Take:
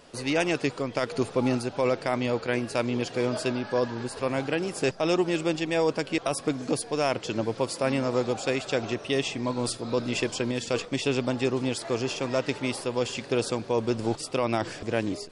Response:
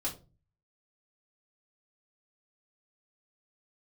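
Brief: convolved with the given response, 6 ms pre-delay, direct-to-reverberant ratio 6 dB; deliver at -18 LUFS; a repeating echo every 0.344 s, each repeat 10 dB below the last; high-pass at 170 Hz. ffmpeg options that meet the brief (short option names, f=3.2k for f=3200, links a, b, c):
-filter_complex "[0:a]highpass=170,aecho=1:1:344|688|1032|1376:0.316|0.101|0.0324|0.0104,asplit=2[a][b];[1:a]atrim=start_sample=2205,adelay=6[c];[b][c]afir=irnorm=-1:irlink=0,volume=-9dB[d];[a][d]amix=inputs=2:normalize=0,volume=8.5dB"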